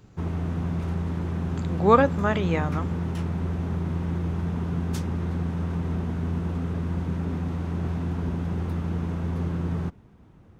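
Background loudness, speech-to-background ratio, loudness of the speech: -29.0 LUFS, 5.5 dB, -23.5 LUFS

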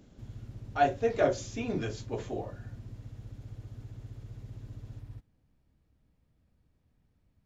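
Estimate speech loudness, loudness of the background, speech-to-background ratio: -31.5 LUFS, -46.5 LUFS, 15.0 dB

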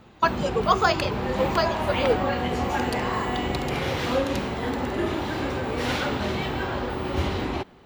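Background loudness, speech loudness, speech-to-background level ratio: -27.0 LUFS, -25.5 LUFS, 1.5 dB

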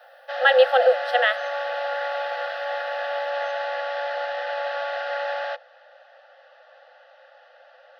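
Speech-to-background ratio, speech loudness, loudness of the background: 9.0 dB, -19.0 LUFS, -28.0 LUFS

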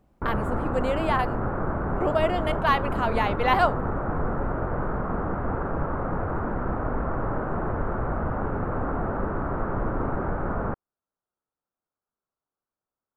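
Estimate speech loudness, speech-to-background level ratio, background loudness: -26.5 LUFS, 2.5 dB, -29.0 LUFS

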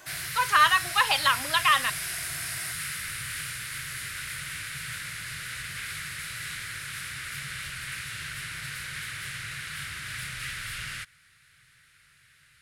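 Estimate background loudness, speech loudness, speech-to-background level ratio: -33.5 LUFS, -23.0 LUFS, 10.5 dB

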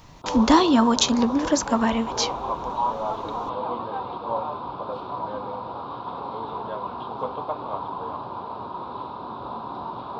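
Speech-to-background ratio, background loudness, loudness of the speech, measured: 10.0 dB, -31.0 LUFS, -21.0 LUFS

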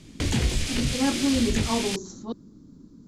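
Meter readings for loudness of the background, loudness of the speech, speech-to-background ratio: -27.5 LUFS, -28.0 LUFS, -0.5 dB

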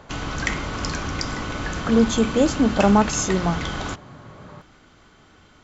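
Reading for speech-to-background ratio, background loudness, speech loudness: 8.0 dB, -28.0 LUFS, -20.0 LUFS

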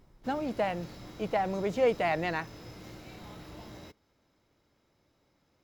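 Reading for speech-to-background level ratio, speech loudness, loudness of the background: 16.5 dB, -31.0 LUFS, -47.5 LUFS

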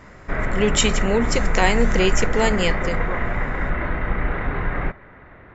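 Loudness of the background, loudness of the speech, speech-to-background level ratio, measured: -25.5 LUFS, -21.5 LUFS, 4.0 dB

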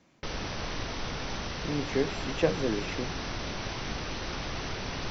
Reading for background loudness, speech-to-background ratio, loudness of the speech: -35.5 LUFS, 3.0 dB, -32.5 LUFS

